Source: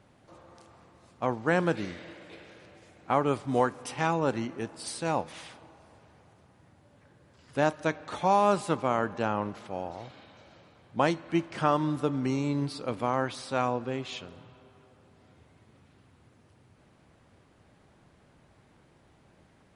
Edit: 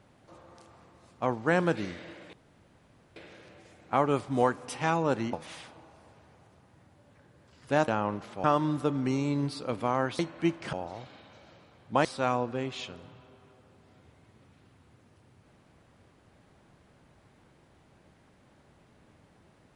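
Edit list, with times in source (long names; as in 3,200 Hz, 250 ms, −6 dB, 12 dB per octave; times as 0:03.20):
0:02.33: splice in room tone 0.83 s
0:04.50–0:05.19: remove
0:07.74–0:09.21: remove
0:09.77–0:11.09: swap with 0:11.63–0:13.38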